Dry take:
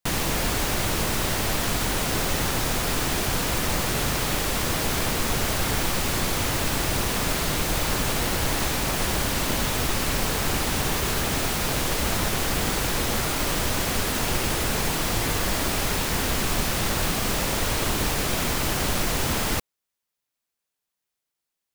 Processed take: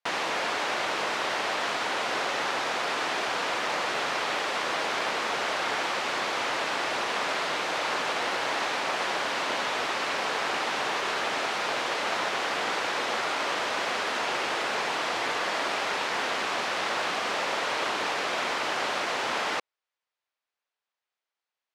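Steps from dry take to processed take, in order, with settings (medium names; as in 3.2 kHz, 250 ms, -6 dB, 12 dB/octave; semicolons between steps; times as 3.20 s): band-pass 600–5500 Hz; treble shelf 4.2 kHz -11.5 dB; trim +3 dB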